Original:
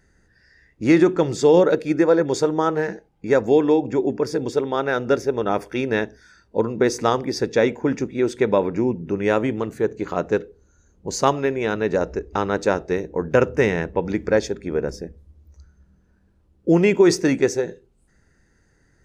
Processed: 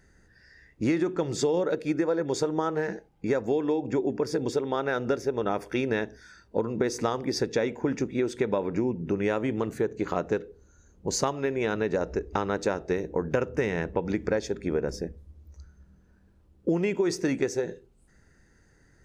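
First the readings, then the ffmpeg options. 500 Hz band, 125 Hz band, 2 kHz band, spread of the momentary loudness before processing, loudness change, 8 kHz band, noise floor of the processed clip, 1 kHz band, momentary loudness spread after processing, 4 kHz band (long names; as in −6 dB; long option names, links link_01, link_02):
−8.0 dB, −6.0 dB, −7.5 dB, 10 LU, −7.5 dB, −4.0 dB, −61 dBFS, −8.0 dB, 5 LU, −5.5 dB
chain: -af "acompressor=threshold=-23dB:ratio=6"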